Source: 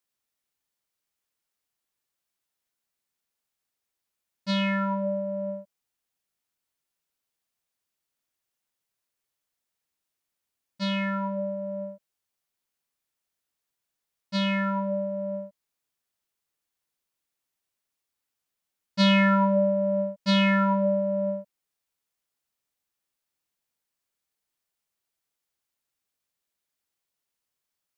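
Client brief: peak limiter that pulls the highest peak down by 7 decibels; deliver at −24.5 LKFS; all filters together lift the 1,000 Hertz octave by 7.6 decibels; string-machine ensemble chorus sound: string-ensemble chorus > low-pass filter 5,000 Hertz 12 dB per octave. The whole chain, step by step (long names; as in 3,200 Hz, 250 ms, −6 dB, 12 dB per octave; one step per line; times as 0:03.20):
parametric band 1,000 Hz +8.5 dB
brickwall limiter −15 dBFS
string-ensemble chorus
low-pass filter 5,000 Hz 12 dB per octave
level +3.5 dB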